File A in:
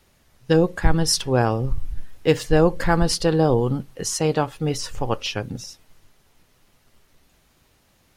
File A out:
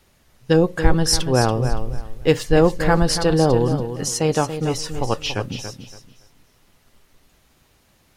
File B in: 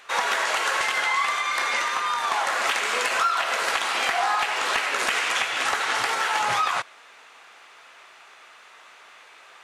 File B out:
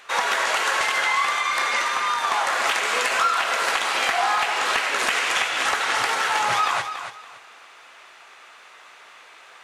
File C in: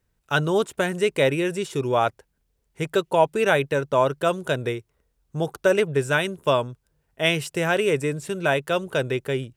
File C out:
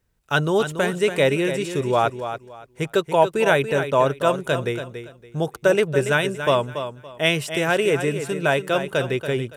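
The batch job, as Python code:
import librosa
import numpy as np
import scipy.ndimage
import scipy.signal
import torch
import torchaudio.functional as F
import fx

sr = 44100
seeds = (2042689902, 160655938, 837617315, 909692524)

y = fx.echo_feedback(x, sr, ms=283, feedback_pct=24, wet_db=-9.5)
y = F.gain(torch.from_numpy(y), 1.5).numpy()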